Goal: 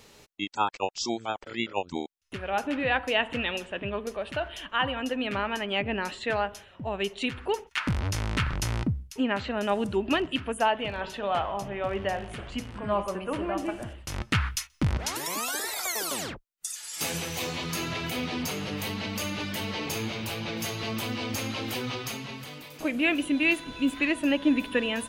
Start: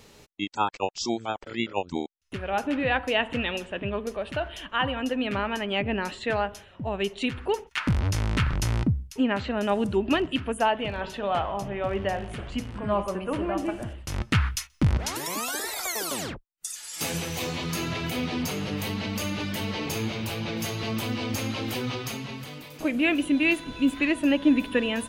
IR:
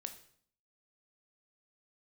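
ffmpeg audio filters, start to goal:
-af "lowshelf=f=420:g=-4.5"

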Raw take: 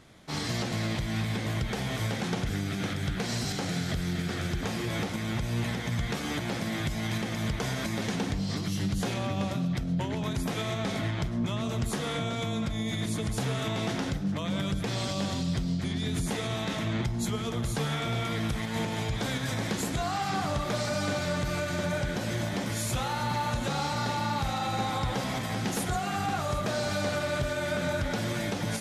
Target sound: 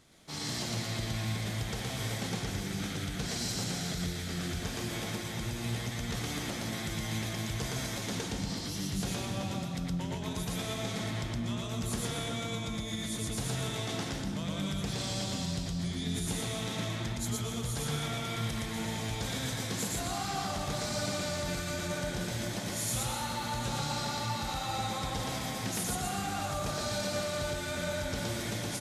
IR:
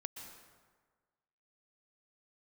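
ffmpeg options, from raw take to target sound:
-filter_complex "[0:a]firequalizer=gain_entry='entry(1700,0);entry(4000,5);entry(7400,8)':delay=0.05:min_phase=1,asplit=2[a][b];[1:a]atrim=start_sample=2205,adelay=116[c];[b][c]afir=irnorm=-1:irlink=0,volume=3.5dB[d];[a][d]amix=inputs=2:normalize=0,volume=-8.5dB"

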